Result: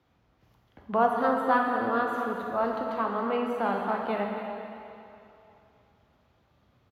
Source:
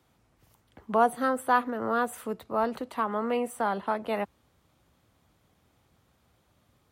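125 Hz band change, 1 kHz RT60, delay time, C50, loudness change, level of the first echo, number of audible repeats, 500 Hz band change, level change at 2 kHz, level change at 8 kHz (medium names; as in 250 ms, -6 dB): +1.5 dB, 2.9 s, 273 ms, 1.5 dB, +0.5 dB, -11.5 dB, 1, +1.0 dB, +1.0 dB, under -15 dB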